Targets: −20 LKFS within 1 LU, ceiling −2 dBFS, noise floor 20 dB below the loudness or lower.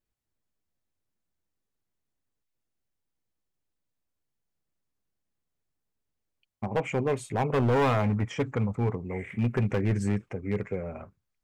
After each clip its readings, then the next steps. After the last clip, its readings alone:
share of clipped samples 1.6%; peaks flattened at −20.0 dBFS; integrated loudness −28.5 LKFS; sample peak −20.0 dBFS; target loudness −20.0 LKFS
→ clipped peaks rebuilt −20 dBFS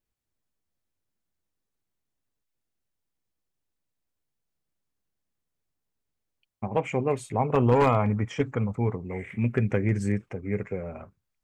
share of clipped samples 0.0%; integrated loudness −26.5 LKFS; sample peak −11.0 dBFS; target loudness −20.0 LKFS
→ level +6.5 dB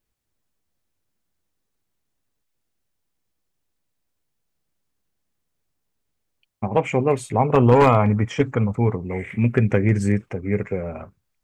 integrated loudness −20.0 LKFS; sample peak −4.5 dBFS; background noise floor −76 dBFS

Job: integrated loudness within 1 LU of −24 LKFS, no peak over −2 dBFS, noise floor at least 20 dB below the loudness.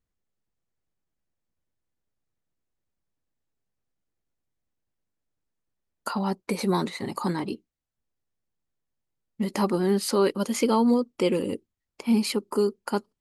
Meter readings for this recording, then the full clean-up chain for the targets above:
integrated loudness −26.0 LKFS; sample peak −11.5 dBFS; target loudness −24.0 LKFS
→ level +2 dB

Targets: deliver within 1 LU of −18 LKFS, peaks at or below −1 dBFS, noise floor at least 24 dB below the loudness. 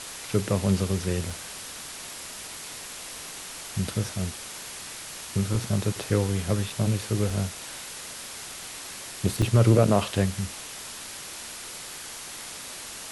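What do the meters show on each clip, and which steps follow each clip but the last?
number of dropouts 5; longest dropout 3.0 ms; background noise floor −40 dBFS; target noise floor −53 dBFS; integrated loudness −29.0 LKFS; sample peak −7.5 dBFS; target loudness −18.0 LKFS
→ repair the gap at 0:01.30/0:05.78/0:06.70/0:07.30/0:09.42, 3 ms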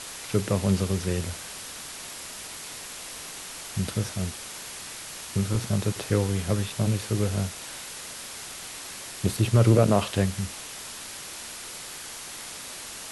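number of dropouts 0; background noise floor −40 dBFS; target noise floor −53 dBFS
→ broadband denoise 13 dB, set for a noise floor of −40 dBFS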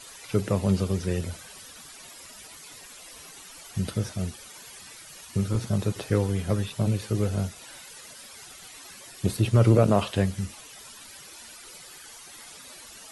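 background noise floor −46 dBFS; target noise floor −51 dBFS
→ broadband denoise 6 dB, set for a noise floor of −46 dBFS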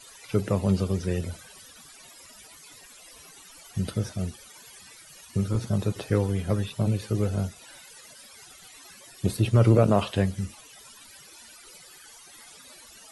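background noise floor −50 dBFS; target noise floor −51 dBFS
→ broadband denoise 6 dB, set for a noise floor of −50 dBFS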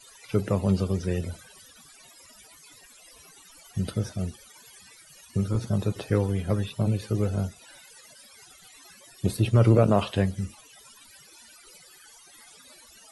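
background noise floor −53 dBFS; integrated loudness −26.5 LKFS; sample peak −8.0 dBFS; target loudness −18.0 LKFS
→ level +8.5 dB
brickwall limiter −1 dBFS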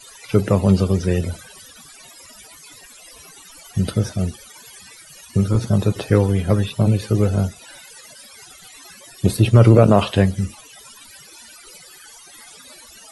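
integrated loudness −18.5 LKFS; sample peak −1.0 dBFS; background noise floor −45 dBFS

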